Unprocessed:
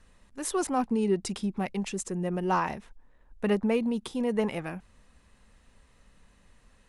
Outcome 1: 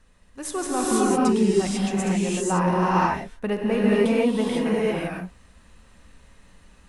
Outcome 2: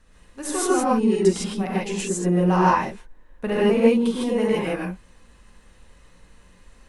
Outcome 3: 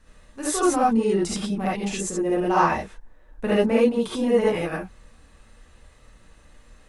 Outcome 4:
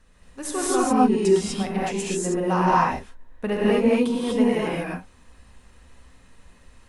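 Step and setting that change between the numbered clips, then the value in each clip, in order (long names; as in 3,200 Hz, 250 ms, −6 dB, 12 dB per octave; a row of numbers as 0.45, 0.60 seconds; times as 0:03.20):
reverb whose tail is shaped and stops, gate: 520, 180, 100, 270 milliseconds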